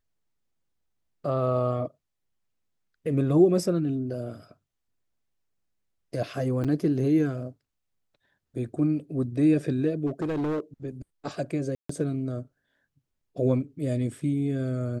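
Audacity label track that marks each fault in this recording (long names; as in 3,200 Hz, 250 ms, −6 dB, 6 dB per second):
6.640000	6.650000	drop-out 6.6 ms
10.060000	10.600000	clipping −25 dBFS
11.750000	11.890000	drop-out 144 ms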